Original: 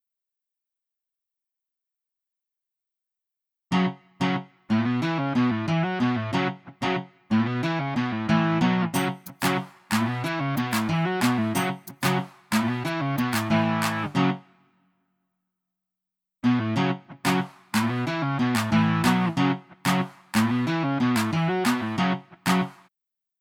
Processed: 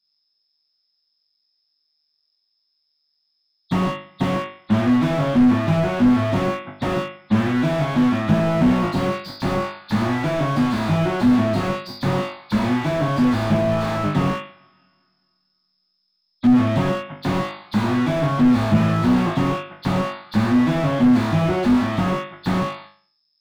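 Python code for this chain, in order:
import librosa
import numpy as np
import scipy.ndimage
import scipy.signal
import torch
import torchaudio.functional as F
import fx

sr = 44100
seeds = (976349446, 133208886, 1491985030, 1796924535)

y = fx.freq_compress(x, sr, knee_hz=3300.0, ratio=4.0)
y = fx.room_flutter(y, sr, wall_m=3.4, rt60_s=0.45)
y = fx.slew_limit(y, sr, full_power_hz=36.0)
y = F.gain(torch.from_numpy(y), 6.0).numpy()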